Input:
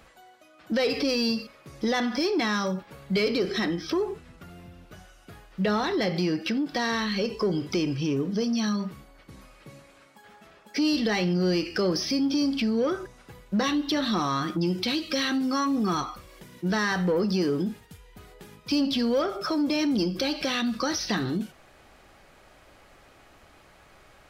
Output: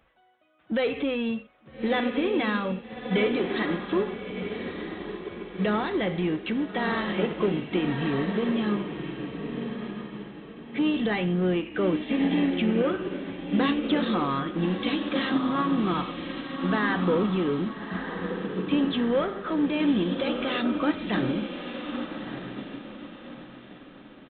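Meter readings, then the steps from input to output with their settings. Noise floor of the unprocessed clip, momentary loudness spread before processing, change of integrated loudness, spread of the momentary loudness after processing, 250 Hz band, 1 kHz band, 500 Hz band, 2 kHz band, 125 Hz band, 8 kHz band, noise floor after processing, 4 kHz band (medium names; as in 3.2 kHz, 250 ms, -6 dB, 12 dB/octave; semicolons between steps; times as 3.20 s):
-56 dBFS, 8 LU, -1.0 dB, 12 LU, +1.0 dB, +0.5 dB, +0.5 dB, +0.5 dB, +0.5 dB, under -40 dB, -49 dBFS, -4.5 dB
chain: in parallel at -9 dB: overload inside the chain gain 30.5 dB; on the sum: resampled via 8 kHz; echo that smears into a reverb 1230 ms, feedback 50%, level -4.5 dB; upward expansion 1.5:1, over -45 dBFS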